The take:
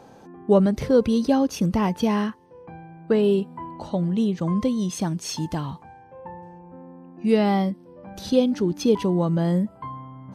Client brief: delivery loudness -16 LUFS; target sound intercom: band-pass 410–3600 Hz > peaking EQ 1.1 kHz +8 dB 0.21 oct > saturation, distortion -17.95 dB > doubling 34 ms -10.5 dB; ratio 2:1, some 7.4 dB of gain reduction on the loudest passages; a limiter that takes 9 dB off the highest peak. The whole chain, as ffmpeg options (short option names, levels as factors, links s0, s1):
-filter_complex "[0:a]acompressor=threshold=0.0501:ratio=2,alimiter=limit=0.0794:level=0:latency=1,highpass=410,lowpass=3600,equalizer=f=1100:t=o:w=0.21:g=8,asoftclip=threshold=0.0398,asplit=2[s0][s1];[s1]adelay=34,volume=0.299[s2];[s0][s2]amix=inputs=2:normalize=0,volume=13.3"